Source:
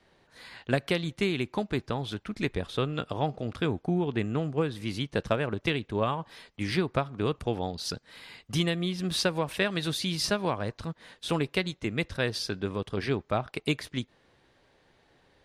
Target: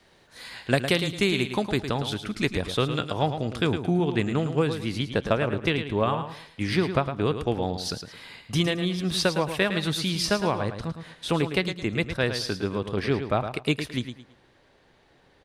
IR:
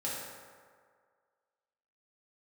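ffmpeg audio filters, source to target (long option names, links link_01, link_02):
-af "asetnsamples=nb_out_samples=441:pad=0,asendcmd='4.75 highshelf g -2',highshelf=frequency=3700:gain=7.5,aecho=1:1:109|218|327:0.355|0.0993|0.0278,volume=3.5dB"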